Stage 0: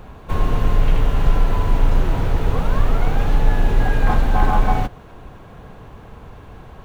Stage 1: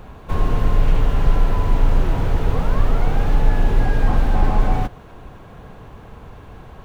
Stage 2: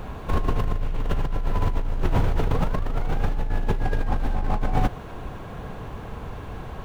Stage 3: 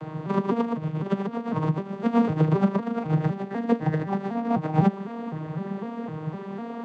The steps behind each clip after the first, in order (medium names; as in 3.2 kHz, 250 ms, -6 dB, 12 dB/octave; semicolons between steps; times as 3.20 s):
slew-rate limiter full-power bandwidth 51 Hz
compressor with a negative ratio -20 dBFS, ratio -1; trim -1.5 dB
vocoder on a broken chord major triad, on D#3, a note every 253 ms; trim +6 dB